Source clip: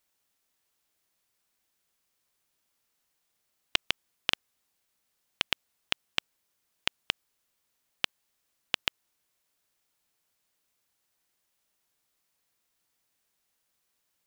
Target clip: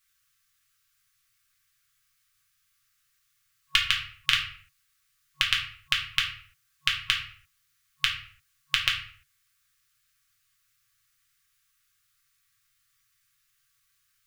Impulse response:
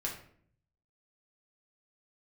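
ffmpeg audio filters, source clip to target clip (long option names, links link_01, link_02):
-filter_complex "[1:a]atrim=start_sample=2205,afade=type=out:start_time=0.4:duration=0.01,atrim=end_sample=18081[link_01];[0:a][link_01]afir=irnorm=-1:irlink=0,afftfilt=real='re*(1-between(b*sr/4096,150,1100))':imag='im*(1-between(b*sr/4096,150,1100))':win_size=4096:overlap=0.75,volume=5.5dB"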